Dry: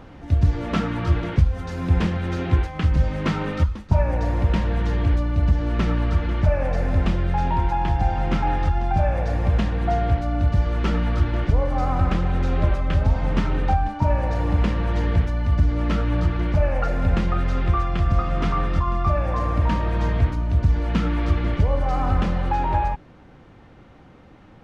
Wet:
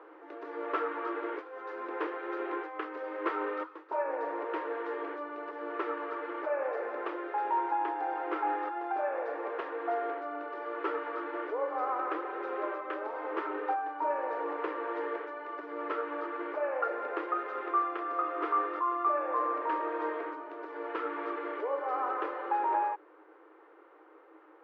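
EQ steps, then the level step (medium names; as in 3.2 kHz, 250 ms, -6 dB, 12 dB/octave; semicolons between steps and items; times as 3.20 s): rippled Chebyshev high-pass 310 Hz, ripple 6 dB; low-pass 1.6 kHz 12 dB/octave; peaking EQ 740 Hz -3.5 dB 0.31 oct; 0.0 dB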